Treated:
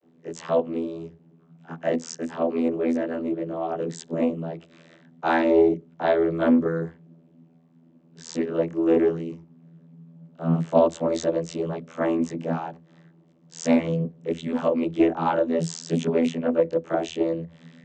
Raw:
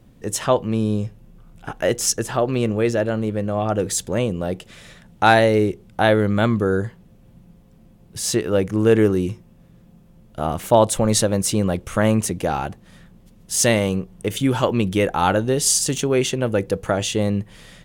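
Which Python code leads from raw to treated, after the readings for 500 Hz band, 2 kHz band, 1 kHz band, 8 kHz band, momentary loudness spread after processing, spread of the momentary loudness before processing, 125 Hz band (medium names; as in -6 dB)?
-3.5 dB, -9.5 dB, -6.5 dB, -19.5 dB, 13 LU, 10 LU, -9.5 dB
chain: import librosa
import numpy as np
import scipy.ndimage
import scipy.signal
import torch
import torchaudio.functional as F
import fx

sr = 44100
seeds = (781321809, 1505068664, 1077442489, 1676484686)

y = fx.chorus_voices(x, sr, voices=6, hz=0.13, base_ms=23, depth_ms=2.9, mix_pct=60)
y = fx.vocoder(y, sr, bands=32, carrier='saw', carrier_hz=82.6)
y = fx.doppler_dist(y, sr, depth_ms=0.22)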